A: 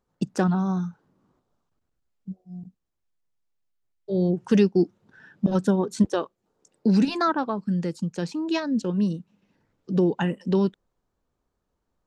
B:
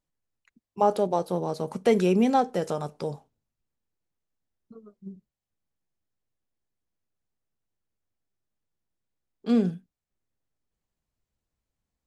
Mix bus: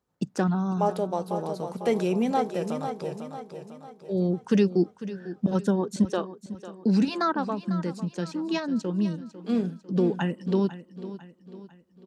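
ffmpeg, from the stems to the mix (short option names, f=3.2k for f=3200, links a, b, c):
-filter_complex "[0:a]volume=-2.5dB,asplit=2[a][b];[b]volume=-14.5dB[c];[1:a]volume=-3.5dB,asplit=2[d][e];[e]volume=-8dB[f];[c][f]amix=inputs=2:normalize=0,aecho=0:1:499|998|1497|1996|2495|2994:1|0.46|0.212|0.0973|0.0448|0.0206[g];[a][d][g]amix=inputs=3:normalize=0,highpass=58"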